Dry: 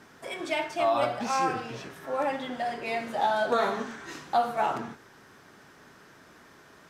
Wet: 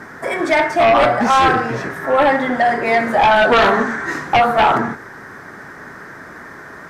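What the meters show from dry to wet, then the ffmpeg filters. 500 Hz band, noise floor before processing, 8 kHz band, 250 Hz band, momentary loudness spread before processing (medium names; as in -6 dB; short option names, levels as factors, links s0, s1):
+13.5 dB, -55 dBFS, no reading, +15.0 dB, 13 LU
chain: -af "highshelf=f=2300:t=q:w=3:g=-6.5,aeval=exprs='0.237*sin(PI/2*2.51*val(0)/0.237)':c=same,volume=1.68"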